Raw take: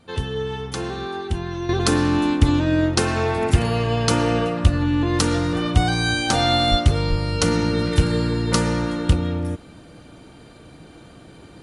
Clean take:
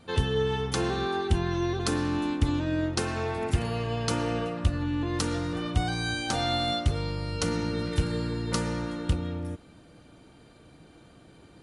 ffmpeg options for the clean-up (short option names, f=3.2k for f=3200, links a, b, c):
-filter_complex "[0:a]asplit=3[a][b][c];[a]afade=t=out:st=6.7:d=0.02[d];[b]highpass=f=140:w=0.5412,highpass=f=140:w=1.3066,afade=t=in:st=6.7:d=0.02,afade=t=out:st=6.82:d=0.02[e];[c]afade=t=in:st=6.82:d=0.02[f];[d][e][f]amix=inputs=3:normalize=0,asplit=3[g][h][i];[g]afade=t=out:st=7.09:d=0.02[j];[h]highpass=f=140:w=0.5412,highpass=f=140:w=1.3066,afade=t=in:st=7.09:d=0.02,afade=t=out:st=7.21:d=0.02[k];[i]afade=t=in:st=7.21:d=0.02[l];[j][k][l]amix=inputs=3:normalize=0,asetnsamples=n=441:p=0,asendcmd='1.69 volume volume -9dB',volume=0dB"